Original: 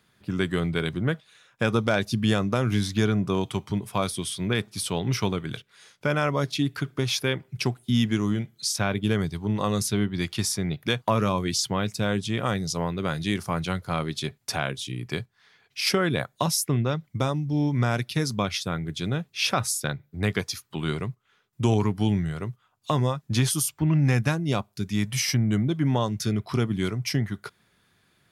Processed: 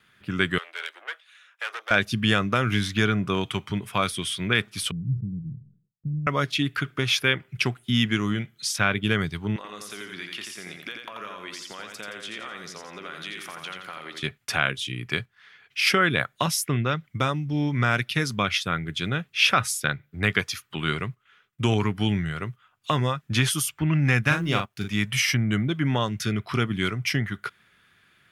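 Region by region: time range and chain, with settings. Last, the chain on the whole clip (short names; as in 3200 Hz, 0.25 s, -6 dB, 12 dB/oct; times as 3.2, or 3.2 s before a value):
0.58–1.91 tube stage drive 28 dB, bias 0.65 + Bessel high-pass 800 Hz, order 8
4.91–6.27 inverse Chebyshev low-pass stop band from 850 Hz, stop band 70 dB + comb 6.3 ms, depth 41% + sustainer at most 120 dB/s
9.56–14.23 HPF 350 Hz + compressor 16:1, threshold -36 dBFS + feedback echo 86 ms, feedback 42%, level -4.5 dB
24.24–24.94 G.711 law mismatch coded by A + doubler 41 ms -5 dB
whole clip: gate with hold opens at -60 dBFS; band shelf 2000 Hz +9 dB; gain -1 dB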